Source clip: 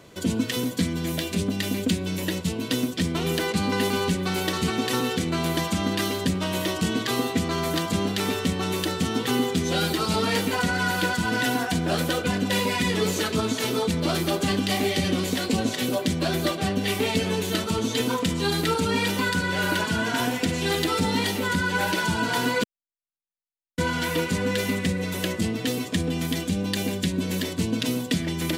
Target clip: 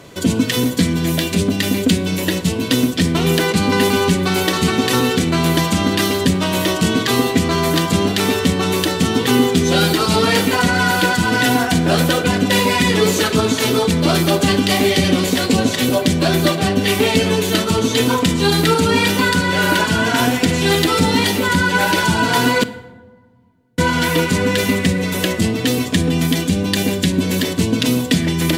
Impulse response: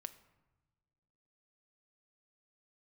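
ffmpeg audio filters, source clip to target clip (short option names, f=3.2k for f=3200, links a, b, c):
-filter_complex "[0:a]asplit=2[a][b];[1:a]atrim=start_sample=2205,asetrate=33075,aresample=44100[c];[b][c]afir=irnorm=-1:irlink=0,volume=12dB[d];[a][d]amix=inputs=2:normalize=0,volume=-2.5dB"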